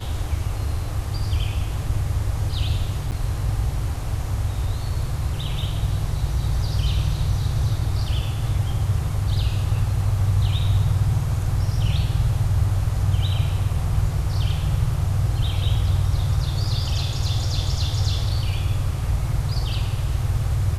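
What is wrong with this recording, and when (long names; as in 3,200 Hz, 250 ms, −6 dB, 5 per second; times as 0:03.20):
0:03.11–0:03.12: drop-out 8.8 ms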